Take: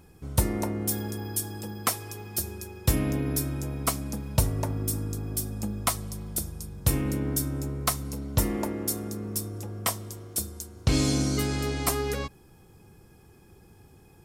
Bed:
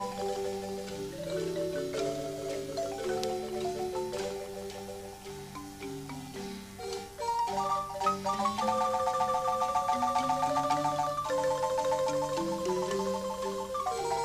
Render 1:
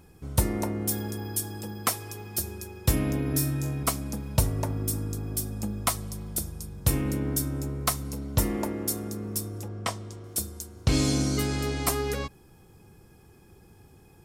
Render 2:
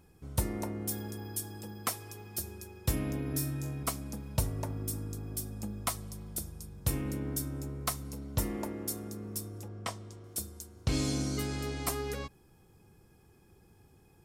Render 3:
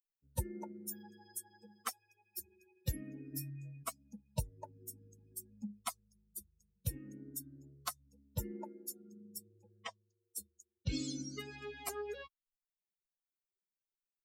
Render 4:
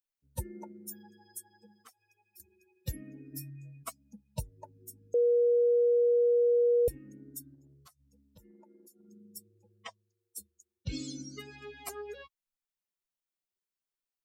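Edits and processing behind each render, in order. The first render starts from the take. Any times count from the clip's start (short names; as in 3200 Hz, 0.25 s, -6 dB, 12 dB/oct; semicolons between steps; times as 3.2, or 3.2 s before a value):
3.31–3.83 flutter echo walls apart 3.8 m, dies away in 0.27 s; 9.68–10.24 air absorption 73 m
gain -7 dB
per-bin expansion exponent 3; three-band squash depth 40%
1.85–2.4 compressor 3:1, threshold -58 dBFS; 5.14–6.88 bleep 479 Hz -21.5 dBFS; 7.54–9.09 compressor 8:1, threshold -55 dBFS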